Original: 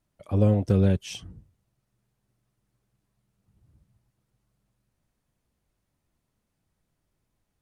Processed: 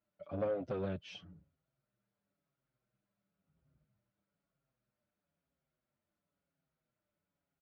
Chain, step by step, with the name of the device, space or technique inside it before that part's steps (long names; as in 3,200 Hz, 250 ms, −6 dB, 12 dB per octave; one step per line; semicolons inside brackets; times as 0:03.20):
barber-pole flanger into a guitar amplifier (barber-pole flanger 6.2 ms −1 Hz; soft clipping −24 dBFS, distortion −10 dB; loudspeaker in its box 88–4,500 Hz, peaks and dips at 110 Hz −8 dB, 160 Hz +6 dB, 270 Hz +3 dB, 590 Hz +10 dB, 1,400 Hz +9 dB, 2,300 Hz +3 dB)
level −8.5 dB